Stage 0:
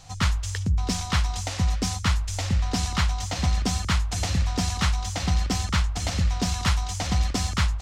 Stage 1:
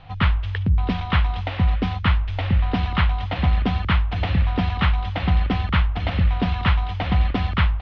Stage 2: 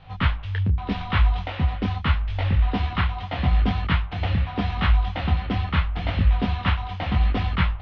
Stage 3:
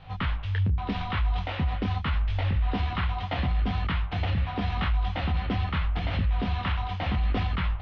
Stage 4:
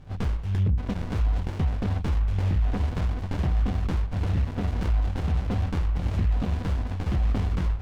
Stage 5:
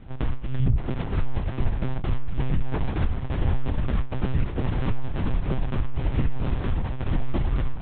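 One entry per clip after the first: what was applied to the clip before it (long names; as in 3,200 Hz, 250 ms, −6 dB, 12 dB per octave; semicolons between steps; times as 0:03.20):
Butterworth low-pass 3,300 Hz 36 dB per octave; level +4.5 dB
micro pitch shift up and down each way 28 cents; level +1.5 dB
brickwall limiter −19 dBFS, peak gain reduction 11 dB
windowed peak hold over 65 samples; level +2.5 dB
one-pitch LPC vocoder at 8 kHz 130 Hz; level +2.5 dB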